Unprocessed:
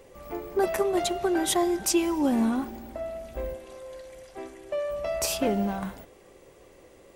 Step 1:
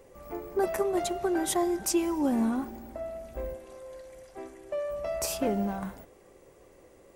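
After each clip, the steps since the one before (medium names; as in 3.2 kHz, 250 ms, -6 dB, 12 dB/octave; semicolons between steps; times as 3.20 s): peaking EQ 3.3 kHz -5.5 dB 1.2 oct; trim -2.5 dB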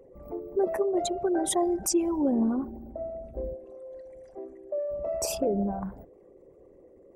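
resonances exaggerated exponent 2; trim +1.5 dB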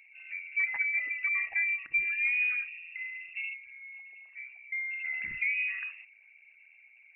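frequency inversion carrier 2.7 kHz; trim -4 dB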